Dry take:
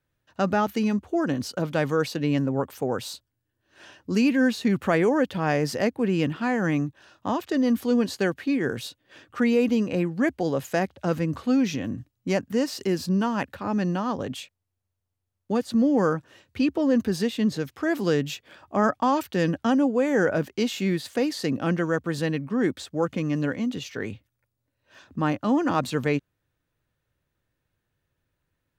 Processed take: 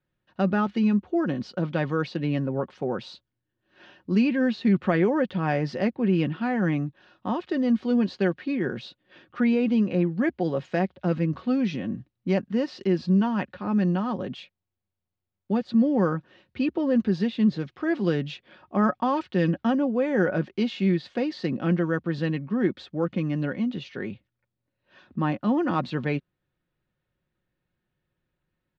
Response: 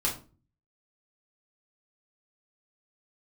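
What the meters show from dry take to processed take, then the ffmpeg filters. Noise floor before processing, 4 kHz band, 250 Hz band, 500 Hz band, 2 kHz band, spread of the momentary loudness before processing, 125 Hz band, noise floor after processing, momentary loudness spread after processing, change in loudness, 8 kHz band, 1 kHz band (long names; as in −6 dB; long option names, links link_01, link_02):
−80 dBFS, −4.5 dB, +0.5 dB, −2.0 dB, −3.0 dB, 10 LU, +1.5 dB, −83 dBFS, 10 LU, −0.5 dB, below −15 dB, −2.5 dB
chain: -af "lowpass=frequency=4300:width=0.5412,lowpass=frequency=4300:width=1.3066,equalizer=frequency=230:width_type=o:width=1.2:gain=4.5,aecho=1:1:5.5:0.41,volume=-3.5dB"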